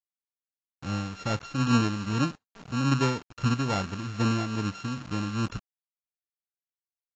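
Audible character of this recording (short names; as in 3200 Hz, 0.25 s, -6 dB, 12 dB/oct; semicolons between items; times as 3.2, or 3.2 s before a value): a buzz of ramps at a fixed pitch in blocks of 32 samples; tremolo triangle 2.4 Hz, depth 60%; a quantiser's noise floor 8-bit, dither none; AAC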